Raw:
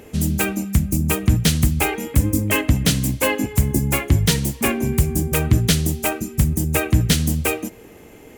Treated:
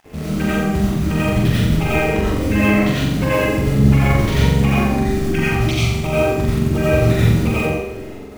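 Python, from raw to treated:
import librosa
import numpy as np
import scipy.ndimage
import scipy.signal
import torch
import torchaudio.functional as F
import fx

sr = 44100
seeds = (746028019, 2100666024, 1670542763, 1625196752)

p1 = fx.spec_dropout(x, sr, seeds[0], share_pct=28)
p2 = scipy.signal.sosfilt(scipy.signal.butter(2, 2800.0, 'lowpass', fs=sr, output='sos'), p1)
p3 = fx.over_compress(p2, sr, threshold_db=-29.0, ratio=-1.0)
p4 = p2 + (p3 * 10.0 ** (-0.5 / 20.0))
p5 = fx.quant_float(p4, sr, bits=2)
p6 = np.sign(p5) * np.maximum(np.abs(p5) - 10.0 ** (-42.0 / 20.0), 0.0)
p7 = fx.room_flutter(p6, sr, wall_m=7.5, rt60_s=0.82)
p8 = fx.rev_freeverb(p7, sr, rt60_s=0.72, hf_ratio=0.25, predelay_ms=50, drr_db=-6.5)
y = p8 * 10.0 ** (-7.5 / 20.0)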